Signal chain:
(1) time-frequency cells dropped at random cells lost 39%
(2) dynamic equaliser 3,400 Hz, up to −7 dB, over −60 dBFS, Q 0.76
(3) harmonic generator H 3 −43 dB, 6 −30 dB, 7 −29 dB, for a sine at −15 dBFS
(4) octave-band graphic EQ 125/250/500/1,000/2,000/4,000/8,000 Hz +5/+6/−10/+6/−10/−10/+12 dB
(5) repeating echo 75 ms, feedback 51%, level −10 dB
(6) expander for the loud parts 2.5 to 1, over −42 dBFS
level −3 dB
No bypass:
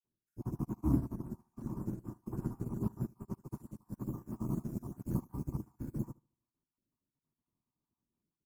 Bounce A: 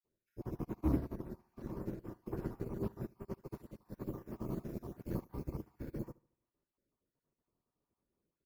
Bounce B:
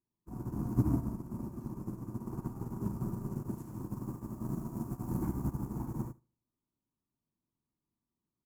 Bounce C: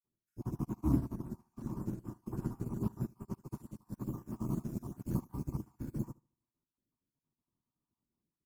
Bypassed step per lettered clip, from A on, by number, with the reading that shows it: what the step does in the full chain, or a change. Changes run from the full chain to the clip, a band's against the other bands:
4, 500 Hz band +7.0 dB
1, 1 kHz band +2.5 dB
2, 8 kHz band +2.0 dB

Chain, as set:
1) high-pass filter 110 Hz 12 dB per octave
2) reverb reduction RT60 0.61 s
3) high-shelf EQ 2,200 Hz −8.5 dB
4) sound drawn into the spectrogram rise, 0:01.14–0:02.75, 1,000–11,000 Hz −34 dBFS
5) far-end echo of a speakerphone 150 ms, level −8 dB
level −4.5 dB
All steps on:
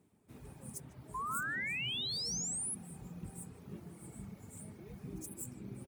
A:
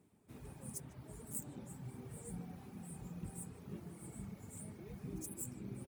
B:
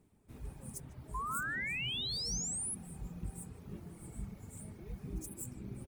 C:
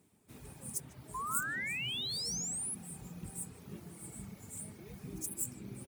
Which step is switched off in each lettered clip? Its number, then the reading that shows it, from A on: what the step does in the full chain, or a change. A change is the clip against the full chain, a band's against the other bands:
4, 4 kHz band −23.0 dB
1, 125 Hz band +2.5 dB
3, 8 kHz band +2.5 dB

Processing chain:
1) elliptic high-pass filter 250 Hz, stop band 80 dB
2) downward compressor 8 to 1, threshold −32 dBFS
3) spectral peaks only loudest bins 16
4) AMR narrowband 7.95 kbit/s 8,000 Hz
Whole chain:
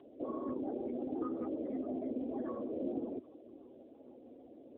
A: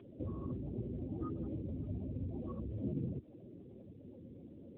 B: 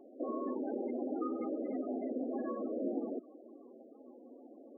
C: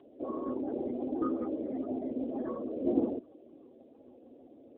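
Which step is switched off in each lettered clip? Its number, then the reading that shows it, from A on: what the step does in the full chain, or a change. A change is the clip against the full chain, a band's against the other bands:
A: 1, 125 Hz band +25.5 dB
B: 4, change in integrated loudness +1.5 LU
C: 2, average gain reduction 2.5 dB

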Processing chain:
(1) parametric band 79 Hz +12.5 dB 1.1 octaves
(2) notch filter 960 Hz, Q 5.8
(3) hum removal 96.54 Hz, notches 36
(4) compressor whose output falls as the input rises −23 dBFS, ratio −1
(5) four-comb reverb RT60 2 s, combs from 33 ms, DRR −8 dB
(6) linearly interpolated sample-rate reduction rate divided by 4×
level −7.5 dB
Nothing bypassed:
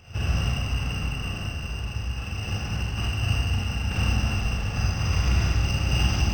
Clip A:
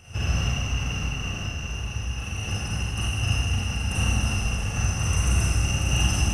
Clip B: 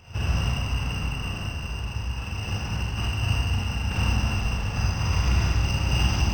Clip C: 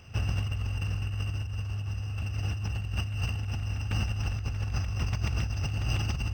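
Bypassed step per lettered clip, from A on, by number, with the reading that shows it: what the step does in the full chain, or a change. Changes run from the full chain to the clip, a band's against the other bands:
6, 8 kHz band +8.0 dB
2, 1 kHz band +2.0 dB
5, change in momentary loudness spread −4 LU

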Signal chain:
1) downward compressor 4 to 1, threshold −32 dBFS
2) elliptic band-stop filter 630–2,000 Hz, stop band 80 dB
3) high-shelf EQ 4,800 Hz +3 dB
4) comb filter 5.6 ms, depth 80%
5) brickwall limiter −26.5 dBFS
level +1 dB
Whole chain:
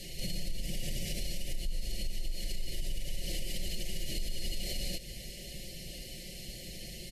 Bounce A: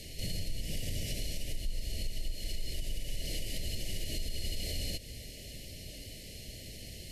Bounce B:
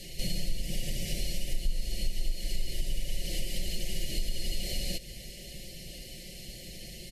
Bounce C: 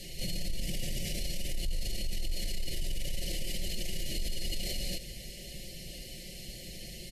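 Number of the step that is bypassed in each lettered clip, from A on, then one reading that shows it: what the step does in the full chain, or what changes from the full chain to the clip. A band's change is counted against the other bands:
4, 125 Hz band +2.5 dB
5, average gain reduction 2.0 dB
1, average gain reduction 7.5 dB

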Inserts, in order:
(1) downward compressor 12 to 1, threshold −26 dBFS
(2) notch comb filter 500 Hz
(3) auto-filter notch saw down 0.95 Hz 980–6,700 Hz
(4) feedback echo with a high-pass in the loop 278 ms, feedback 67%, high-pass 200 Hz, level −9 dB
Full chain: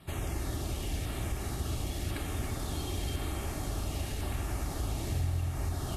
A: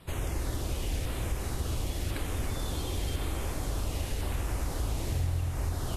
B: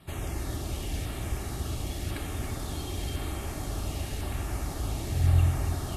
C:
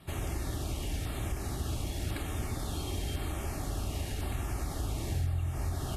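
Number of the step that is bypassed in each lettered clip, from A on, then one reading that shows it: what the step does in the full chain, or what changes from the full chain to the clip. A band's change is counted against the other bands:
2, change in integrated loudness +1.5 LU
1, average gain reduction 2.0 dB
4, echo-to-direct ratio −6.5 dB to none audible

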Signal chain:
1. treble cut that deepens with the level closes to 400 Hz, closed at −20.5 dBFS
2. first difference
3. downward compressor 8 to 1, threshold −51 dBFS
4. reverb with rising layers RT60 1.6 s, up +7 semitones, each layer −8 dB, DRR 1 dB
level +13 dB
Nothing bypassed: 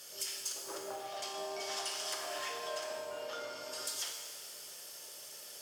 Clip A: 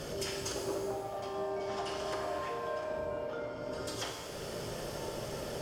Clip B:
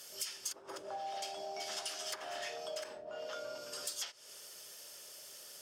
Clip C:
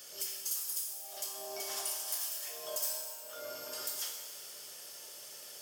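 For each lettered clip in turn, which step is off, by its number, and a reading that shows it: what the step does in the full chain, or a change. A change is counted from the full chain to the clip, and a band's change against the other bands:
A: 2, 125 Hz band +21.5 dB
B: 4, change in integrated loudness −2.5 LU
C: 1, 8 kHz band +9.0 dB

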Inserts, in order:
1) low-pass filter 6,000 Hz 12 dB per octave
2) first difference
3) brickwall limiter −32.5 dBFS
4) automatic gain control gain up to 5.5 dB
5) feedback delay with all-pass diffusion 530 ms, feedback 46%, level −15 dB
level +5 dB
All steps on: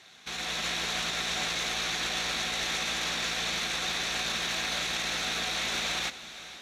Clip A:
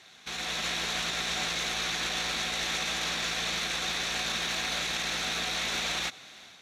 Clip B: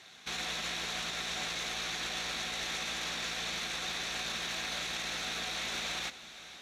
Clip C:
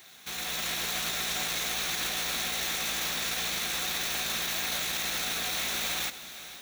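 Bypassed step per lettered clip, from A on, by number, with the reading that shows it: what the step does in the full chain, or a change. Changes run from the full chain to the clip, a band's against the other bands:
5, echo-to-direct ratio −14.0 dB to none audible
4, change in momentary loudness spread −2 LU
1, 8 kHz band +4.5 dB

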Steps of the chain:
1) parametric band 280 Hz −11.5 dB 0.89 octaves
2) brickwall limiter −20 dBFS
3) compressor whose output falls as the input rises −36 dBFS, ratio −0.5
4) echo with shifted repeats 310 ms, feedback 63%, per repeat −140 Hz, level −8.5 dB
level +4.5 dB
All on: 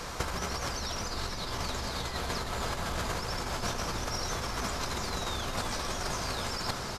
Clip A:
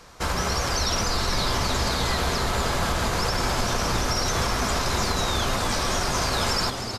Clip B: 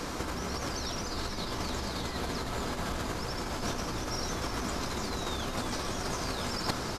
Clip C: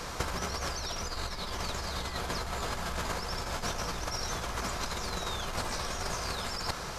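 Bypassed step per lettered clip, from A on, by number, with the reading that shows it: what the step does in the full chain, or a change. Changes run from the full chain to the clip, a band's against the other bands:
3, change in crest factor −6.5 dB
1, 250 Hz band +5.0 dB
4, echo-to-direct ratio −6.5 dB to none audible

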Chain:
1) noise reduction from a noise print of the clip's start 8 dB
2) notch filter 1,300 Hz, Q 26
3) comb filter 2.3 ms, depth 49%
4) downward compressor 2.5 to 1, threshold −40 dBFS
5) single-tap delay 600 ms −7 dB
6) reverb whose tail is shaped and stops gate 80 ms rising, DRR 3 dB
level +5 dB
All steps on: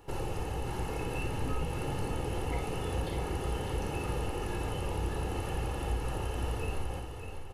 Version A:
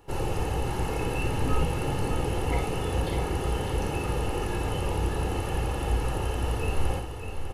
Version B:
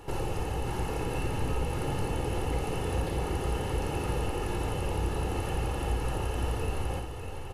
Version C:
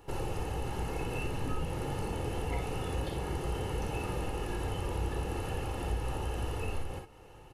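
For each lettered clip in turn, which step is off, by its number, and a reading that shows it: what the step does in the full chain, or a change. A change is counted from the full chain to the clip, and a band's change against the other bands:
4, average gain reduction 6.0 dB
1, change in integrated loudness +3.0 LU
5, echo-to-direct ratio −1.0 dB to −3.0 dB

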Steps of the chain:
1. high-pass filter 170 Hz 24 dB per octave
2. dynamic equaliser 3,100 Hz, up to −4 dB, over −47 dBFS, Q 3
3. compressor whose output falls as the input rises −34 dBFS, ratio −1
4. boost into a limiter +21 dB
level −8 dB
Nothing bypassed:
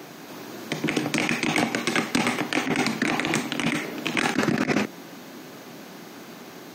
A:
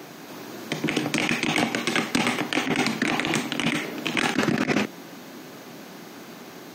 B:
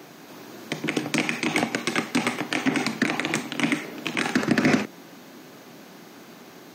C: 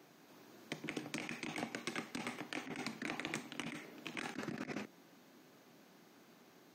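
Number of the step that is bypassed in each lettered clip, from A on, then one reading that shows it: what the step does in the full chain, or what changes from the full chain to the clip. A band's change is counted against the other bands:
2, 4 kHz band +2.0 dB
3, change in momentary loudness spread +4 LU
4, change in crest factor +6.0 dB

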